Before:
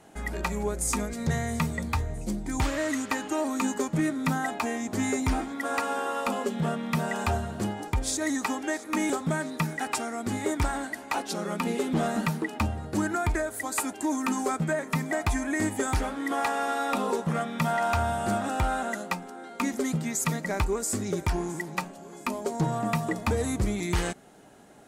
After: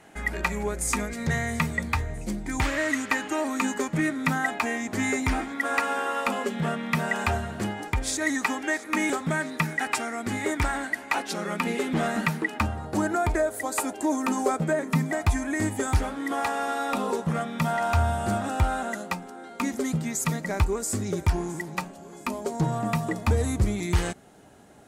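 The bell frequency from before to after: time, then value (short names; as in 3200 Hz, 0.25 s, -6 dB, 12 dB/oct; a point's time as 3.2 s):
bell +7.5 dB 1.1 oct
12.51 s 2000 Hz
13.12 s 550 Hz
14.64 s 550 Hz
15.27 s 81 Hz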